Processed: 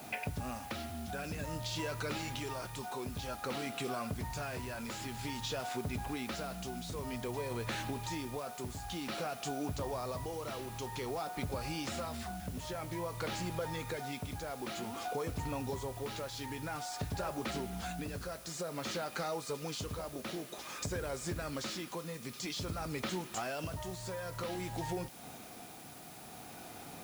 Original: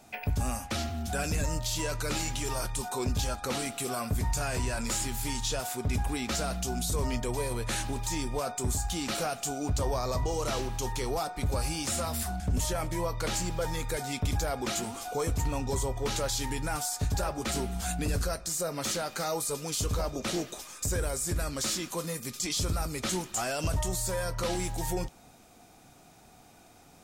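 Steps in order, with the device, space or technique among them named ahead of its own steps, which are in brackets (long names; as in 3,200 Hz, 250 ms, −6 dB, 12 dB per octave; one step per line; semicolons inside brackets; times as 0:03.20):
medium wave at night (band-pass filter 100–4,000 Hz; downward compressor 4 to 1, threshold −45 dBFS, peak gain reduction 14.5 dB; amplitude tremolo 0.52 Hz, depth 37%; steady tone 10,000 Hz −69 dBFS; white noise bed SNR 15 dB)
level +8 dB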